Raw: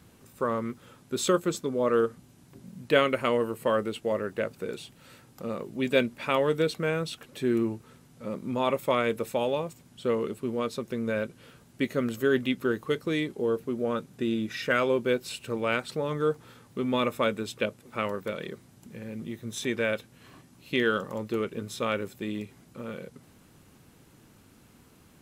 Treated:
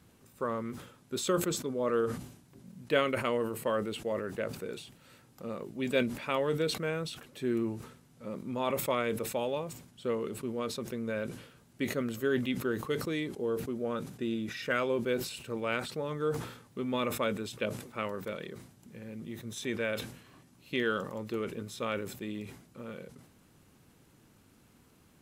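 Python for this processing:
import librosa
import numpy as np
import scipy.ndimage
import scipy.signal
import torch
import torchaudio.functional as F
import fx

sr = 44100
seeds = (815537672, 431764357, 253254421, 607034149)

y = fx.sustainer(x, sr, db_per_s=85.0)
y = F.gain(torch.from_numpy(y), -5.5).numpy()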